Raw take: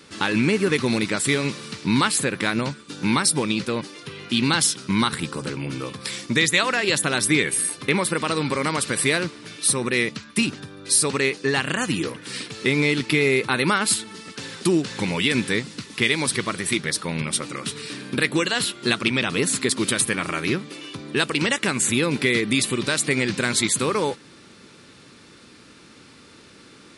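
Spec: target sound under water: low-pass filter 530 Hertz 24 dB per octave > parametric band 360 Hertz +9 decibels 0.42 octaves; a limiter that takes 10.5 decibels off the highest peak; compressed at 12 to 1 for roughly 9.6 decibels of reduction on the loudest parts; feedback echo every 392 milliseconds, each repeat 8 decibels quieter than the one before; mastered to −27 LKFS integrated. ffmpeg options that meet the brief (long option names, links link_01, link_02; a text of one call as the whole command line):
ffmpeg -i in.wav -af "acompressor=threshold=-25dB:ratio=12,alimiter=limit=-19.5dB:level=0:latency=1,lowpass=frequency=530:width=0.5412,lowpass=frequency=530:width=1.3066,equalizer=frequency=360:width_type=o:width=0.42:gain=9,aecho=1:1:392|784|1176|1568|1960:0.398|0.159|0.0637|0.0255|0.0102,volume=4.5dB" out.wav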